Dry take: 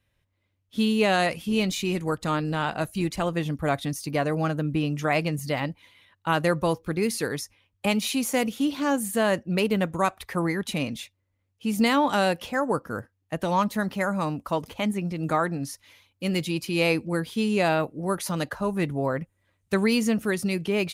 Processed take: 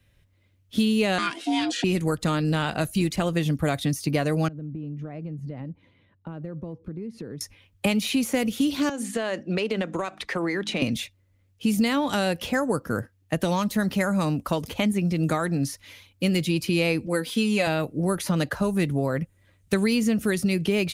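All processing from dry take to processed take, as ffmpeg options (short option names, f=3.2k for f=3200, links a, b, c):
-filter_complex "[0:a]asettb=1/sr,asplit=3[a][b][c];[a]atrim=end=1.184[d];[b]atrim=start=1.18:end=1.84,asetpts=PTS-STARTPTS,afade=t=in:d=0.004:c=qsin,afade=t=out:st=0.656:d=0.004:c=qsin,aecho=1:1:4.2:0.45,atrim=end_sample=29106,aeval=exprs='val(0)*sin(2*PI*500*n/s)':c=same,highpass=f=200:w=0.5412,highpass=f=200:w=1.3066,equalizer=f=200:t=q:w=4:g=-9,equalizer=f=690:t=q:w=4:g=-7,equalizer=f=1.5k:t=q:w=4:g=8,equalizer=f=2.1k:t=q:w=4:g=-3,lowpass=f=9k:w=0.5412,lowpass=f=9k:w=1.3066[e];[c]atrim=start=1.836[f];[d][e]acrossfade=d=0.004:c1=hsin:c2=qsin[g];[g][f]acrossfade=d=0.004:c1=qsin:c2=hsin,asettb=1/sr,asplit=3[h][i][j];[h]atrim=end=4.484[k];[i]atrim=start=4.48:end=7.41,asetpts=PTS-STARTPTS,afade=t=in:d=0.004:c=qsin,afade=t=out:st=2.926:d=0.004:c=qsin,bandpass=f=200:t=q:w=0.63,acompressor=threshold=-42dB:ratio=6:attack=3.2:release=140:knee=1:detection=peak[l];[j]atrim=start=7.406[m];[k][l]acrossfade=d=0.004:c1=hsin:c2=qsin[n];[n][m]acrossfade=d=0.004:c1=qsin:c2=hsin,asettb=1/sr,asplit=3[o][p][q];[o]atrim=end=8.894[r];[p]atrim=start=8.89:end=10.82,asetpts=PTS-STARTPTS,afade=t=in:d=0.004:c=qsin,afade=t=out:st=1.926:d=0.004:c=qsin,acrossover=split=250 7800:gain=0.141 1 0.0631[s][t][u];[s][t][u]amix=inputs=3:normalize=0,bandreject=f=51.64:t=h:w=4,bandreject=f=103.28:t=h:w=4,bandreject=f=154.92:t=h:w=4,bandreject=f=206.56:t=h:w=4,bandreject=f=258.2:t=h:w=4,bandreject=f=309.84:t=h:w=4,acompressor=threshold=-29dB:ratio=5:attack=3.2:release=140:knee=1:detection=peak[v];[q]atrim=start=10.816[w];[r][v]acrossfade=d=0.004:c1=hsin:c2=qsin[x];[x][w]acrossfade=d=0.004:c1=qsin:c2=hsin,asettb=1/sr,asplit=3[y][z][aa];[y]atrim=end=17.064[ab];[z]atrim=start=17.06:end=17.67,asetpts=PTS-STARTPTS,afade=t=in:d=0.004:c=qsin,afade=t=out:st=0.606:d=0.004:c=qsin,highpass=f=370:p=1,aecho=1:1:3.9:0.56,atrim=end_sample=26901[ac];[aa]atrim=start=17.666[ad];[ab][ac]acrossfade=d=0.004:c1=hsin:c2=qsin[ae];[ae][ad]acrossfade=d=0.004:c1=qsin:c2=hsin,lowshelf=f=170:g=4.5,acrossover=split=89|3400[af][ag][ah];[af]acompressor=threshold=-55dB:ratio=4[ai];[ag]acompressor=threshold=-29dB:ratio=4[aj];[ah]acompressor=threshold=-43dB:ratio=4[ak];[ai][aj][ak]amix=inputs=3:normalize=0,equalizer=f=950:w=1.5:g=-5,volume=8dB"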